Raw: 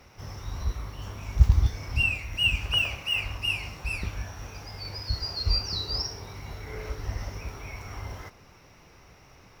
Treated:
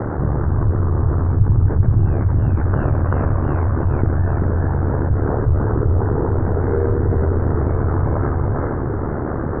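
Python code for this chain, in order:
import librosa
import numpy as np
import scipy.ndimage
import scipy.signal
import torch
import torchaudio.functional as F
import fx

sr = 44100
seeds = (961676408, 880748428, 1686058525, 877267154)

y = scipy.signal.sosfilt(scipy.signal.butter(12, 1700.0, 'lowpass', fs=sr, output='sos'), x)
y = fx.peak_eq(y, sr, hz=330.0, db=12.0, octaves=1.4)
y = y + 10.0 ** (-3.5 / 20.0) * np.pad(y, (int(386 * sr / 1000.0), 0))[:len(y)]
y = y * np.sin(2.0 * np.pi * 37.0 * np.arange(len(y)) / sr)
y = fx.peak_eq(y, sr, hz=87.0, db=8.5, octaves=1.2)
y = y + 10.0 ** (-13.5 / 20.0) * np.pad(y, (int(463 * sr / 1000.0), 0))[:len(y)]
y = fx.env_flatten(y, sr, amount_pct=70)
y = F.gain(torch.from_numpy(y), -1.0).numpy()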